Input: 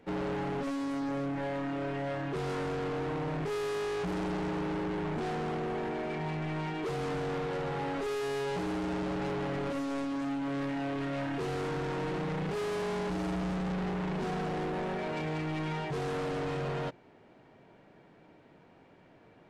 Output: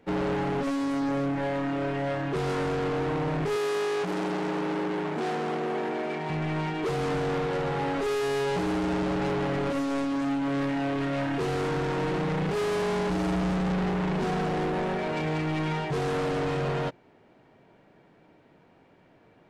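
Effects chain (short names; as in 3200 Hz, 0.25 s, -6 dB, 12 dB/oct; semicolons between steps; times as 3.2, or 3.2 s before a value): 3.56–6.3 HPF 210 Hz 12 dB/oct; upward expander 1.5:1, over -45 dBFS; gain +6.5 dB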